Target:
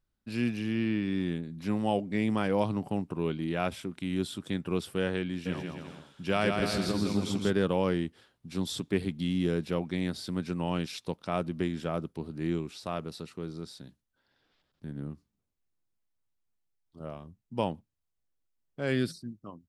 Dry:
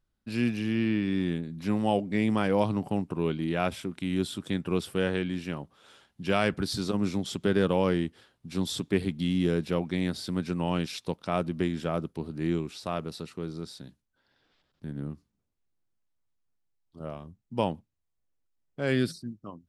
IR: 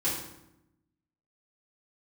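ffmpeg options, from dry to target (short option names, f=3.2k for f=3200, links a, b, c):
-filter_complex "[0:a]asplit=3[a][b][c];[a]afade=t=out:st=5.45:d=0.02[d];[b]aecho=1:1:160|280|370|437.5|488.1:0.631|0.398|0.251|0.158|0.1,afade=t=in:st=5.45:d=0.02,afade=t=out:st=7.5:d=0.02[e];[c]afade=t=in:st=7.5:d=0.02[f];[d][e][f]amix=inputs=3:normalize=0,volume=-2.5dB"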